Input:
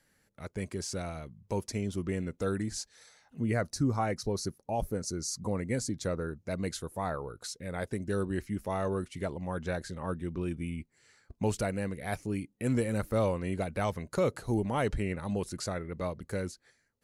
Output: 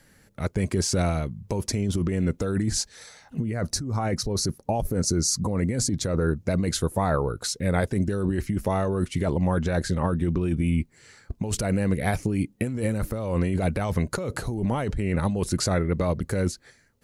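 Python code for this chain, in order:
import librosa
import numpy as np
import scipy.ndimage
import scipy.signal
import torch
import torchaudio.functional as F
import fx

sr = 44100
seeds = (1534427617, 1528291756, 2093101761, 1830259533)

y = fx.low_shelf(x, sr, hz=300.0, db=5.5)
y = fx.over_compress(y, sr, threshold_db=-32.0, ratio=-1.0)
y = F.gain(torch.from_numpy(y), 8.0).numpy()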